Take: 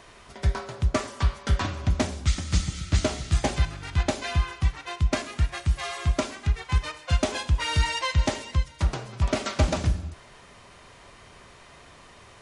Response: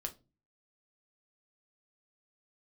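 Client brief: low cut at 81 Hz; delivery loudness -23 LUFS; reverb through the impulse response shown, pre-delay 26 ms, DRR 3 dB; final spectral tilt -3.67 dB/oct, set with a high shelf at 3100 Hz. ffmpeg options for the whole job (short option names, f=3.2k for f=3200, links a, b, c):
-filter_complex "[0:a]highpass=81,highshelf=f=3.1k:g=7.5,asplit=2[a][b];[1:a]atrim=start_sample=2205,adelay=26[c];[b][c]afir=irnorm=-1:irlink=0,volume=-2dB[d];[a][d]amix=inputs=2:normalize=0,volume=3dB"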